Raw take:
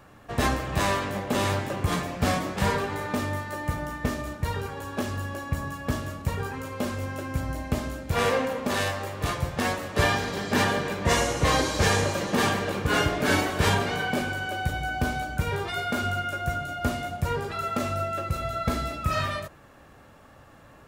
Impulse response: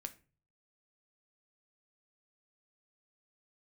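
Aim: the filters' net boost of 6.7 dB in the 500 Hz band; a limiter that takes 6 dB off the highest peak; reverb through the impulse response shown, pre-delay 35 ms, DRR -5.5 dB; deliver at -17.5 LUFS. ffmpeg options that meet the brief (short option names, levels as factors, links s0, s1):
-filter_complex "[0:a]equalizer=f=500:t=o:g=8,alimiter=limit=0.266:level=0:latency=1,asplit=2[s0][s1];[1:a]atrim=start_sample=2205,adelay=35[s2];[s1][s2]afir=irnorm=-1:irlink=0,volume=2.82[s3];[s0][s3]amix=inputs=2:normalize=0,volume=1.26"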